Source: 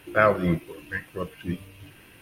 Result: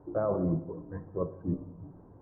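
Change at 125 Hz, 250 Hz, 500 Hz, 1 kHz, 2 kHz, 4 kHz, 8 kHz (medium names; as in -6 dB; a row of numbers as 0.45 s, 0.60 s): -3.5 dB, -3.5 dB, -6.5 dB, -14.0 dB, -29.0 dB, under -40 dB, under -25 dB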